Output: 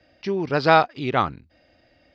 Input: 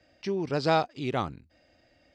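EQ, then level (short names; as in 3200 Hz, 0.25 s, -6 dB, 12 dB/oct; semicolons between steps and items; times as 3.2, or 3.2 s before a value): LPF 5300 Hz 24 dB/oct; dynamic EQ 1500 Hz, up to +8 dB, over -40 dBFS, Q 0.71; +4.5 dB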